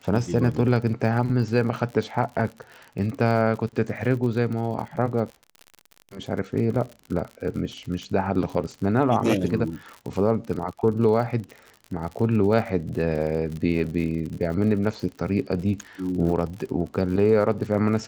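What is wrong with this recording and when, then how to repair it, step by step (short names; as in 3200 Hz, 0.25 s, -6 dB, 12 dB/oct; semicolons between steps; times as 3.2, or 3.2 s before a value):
crackle 59/s -32 dBFS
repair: de-click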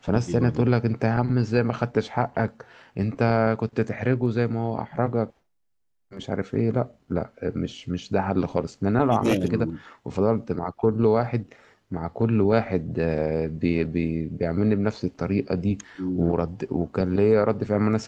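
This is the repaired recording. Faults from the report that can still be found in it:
none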